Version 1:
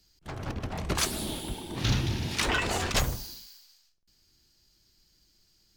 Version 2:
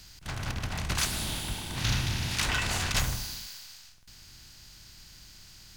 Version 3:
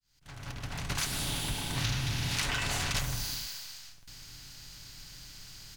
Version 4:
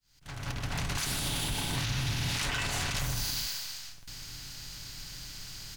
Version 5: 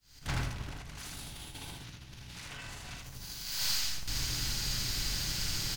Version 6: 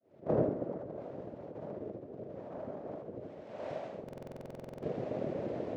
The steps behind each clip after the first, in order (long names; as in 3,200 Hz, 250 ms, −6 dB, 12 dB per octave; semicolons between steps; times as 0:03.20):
compressor on every frequency bin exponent 0.6; parametric band 410 Hz −10 dB 1.8 octaves; level −2.5 dB
fade in at the beginning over 1.58 s; comb filter 7.1 ms, depth 45%; downward compressor 6 to 1, threshold −30 dBFS, peak gain reduction 8.5 dB; level +2 dB
brickwall limiter −27.5 dBFS, peak gain reduction 10.5 dB; level +5 dB
sub-octave generator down 1 octave, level −3 dB; compressor whose output falls as the input rises −39 dBFS, ratio −0.5; loudspeakers that aren't time-aligned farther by 14 metres −10 dB, 27 metres −3 dB; level +1 dB
cochlear-implant simulation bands 3; low-pass with resonance 610 Hz, resonance Q 4.9; buffer that repeats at 0:04.04, samples 2,048, times 16; level +3 dB